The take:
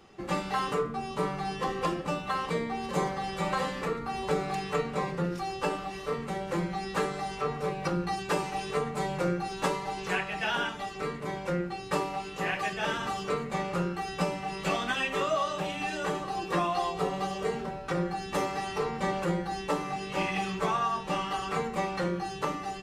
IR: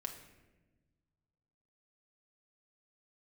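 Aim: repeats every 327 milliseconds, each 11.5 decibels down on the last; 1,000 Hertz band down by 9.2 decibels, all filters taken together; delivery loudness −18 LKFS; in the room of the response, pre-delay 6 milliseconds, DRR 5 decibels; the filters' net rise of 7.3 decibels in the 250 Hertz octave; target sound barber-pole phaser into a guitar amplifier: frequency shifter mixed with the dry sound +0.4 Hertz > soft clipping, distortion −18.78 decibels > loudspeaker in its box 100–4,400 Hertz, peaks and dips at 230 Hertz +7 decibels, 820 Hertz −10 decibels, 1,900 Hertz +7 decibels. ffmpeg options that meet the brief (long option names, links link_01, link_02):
-filter_complex "[0:a]equalizer=frequency=250:width_type=o:gain=8,equalizer=frequency=1000:width_type=o:gain=-8,aecho=1:1:327|654|981:0.266|0.0718|0.0194,asplit=2[link_01][link_02];[1:a]atrim=start_sample=2205,adelay=6[link_03];[link_02][link_03]afir=irnorm=-1:irlink=0,volume=-3.5dB[link_04];[link_01][link_04]amix=inputs=2:normalize=0,asplit=2[link_05][link_06];[link_06]afreqshift=0.4[link_07];[link_05][link_07]amix=inputs=2:normalize=1,asoftclip=threshold=-20.5dB,highpass=100,equalizer=frequency=230:width_type=q:width=4:gain=7,equalizer=frequency=820:width_type=q:width=4:gain=-10,equalizer=frequency=1900:width_type=q:width=4:gain=7,lowpass=frequency=4400:width=0.5412,lowpass=frequency=4400:width=1.3066,volume=13.5dB"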